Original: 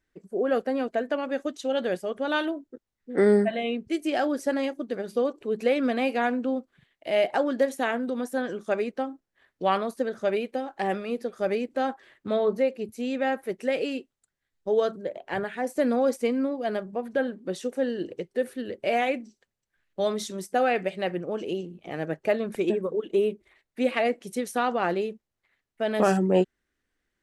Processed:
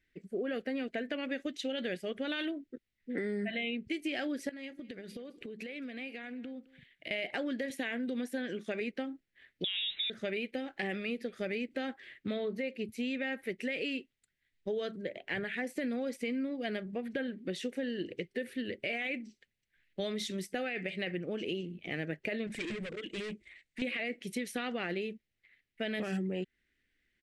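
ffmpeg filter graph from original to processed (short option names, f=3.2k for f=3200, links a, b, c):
-filter_complex "[0:a]asettb=1/sr,asplit=3[a][b][c];[a]atrim=end=4.494[d];[b]atrim=start=4.49:end=7.11,asetpts=PTS-STARTPTS,afade=t=in:d=0.004:c=qsin,afade=t=out:st=2.616:d=0.004:c=qsin,acompressor=threshold=-38dB:ratio=10:attack=3.2:release=140:knee=1:detection=peak,aecho=1:1:213:0.0891,atrim=end_sample=115542[e];[c]atrim=start=7.106[f];[d][e]acrossfade=d=0.004:c1=hsin:c2=qsin[g];[g][f]acrossfade=d=0.004:c1=qsin:c2=hsin,asettb=1/sr,asplit=3[h][i][j];[h]atrim=end=7.704[k];[i]atrim=start=7.7:end=8.81,asetpts=PTS-STARTPTS,afade=t=in:d=0.004:c=qsin,afade=t=out:st=1.106:d=0.004:c=qsin,highpass=130,bandreject=f=1.3k:w=13[l];[j]atrim=start=8.806[m];[k][l]acrossfade=d=0.004:c1=hsin:c2=qsin[n];[n][m]acrossfade=d=0.004:c1=qsin:c2=hsin,asettb=1/sr,asplit=3[o][p][q];[o]atrim=end=9.644[r];[p]atrim=start=9.64:end=10.1,asetpts=PTS-STARTPTS,afade=t=in:d=0.004:c=qsin,afade=t=out:st=0.456:d=0.004:c=qsin,aeval=exprs='val(0)+0.5*0.0133*sgn(val(0))':c=same,lowpass=f=3.4k:t=q:w=0.5098,lowpass=f=3.4k:t=q:w=0.6013,lowpass=f=3.4k:t=q:w=0.9,lowpass=f=3.4k:t=q:w=2.563,afreqshift=-4000[s];[q]atrim=start=10.096[t];[r][s]acrossfade=d=0.004:c1=hsin:c2=qsin[u];[u][t]acrossfade=d=0.004:c1=qsin:c2=hsin,asettb=1/sr,asplit=3[v][w][x];[v]atrim=end=22.474[y];[w]atrim=start=22.47:end=23.82,asetpts=PTS-STARTPTS,afade=t=in:d=0.004:c=qsin,afade=t=out:st=1.346:d=0.004:c=qsin,bandreject=f=390:w=5.6,volume=35.5dB,asoftclip=hard,volume=-35.5dB,lowpass=f=8k:t=q:w=2.6[z];[x]atrim=start=23.816[aa];[y][z]acrossfade=d=0.004:c1=hsin:c2=qsin[ab];[ab][aa]acrossfade=d=0.004:c1=qsin:c2=hsin,firequalizer=gain_entry='entry(230,0);entry(970,-14);entry(2000,8);entry(6300,-5)':delay=0.05:min_phase=1,alimiter=limit=-20.5dB:level=0:latency=1:release=12,acompressor=threshold=-32dB:ratio=6"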